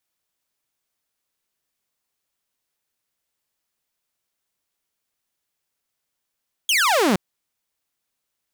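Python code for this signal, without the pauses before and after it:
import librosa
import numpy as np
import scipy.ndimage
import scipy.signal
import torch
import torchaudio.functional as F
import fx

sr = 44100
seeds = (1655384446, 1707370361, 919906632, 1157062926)

y = fx.laser_zap(sr, level_db=-13, start_hz=3400.0, end_hz=170.0, length_s=0.47, wave='saw')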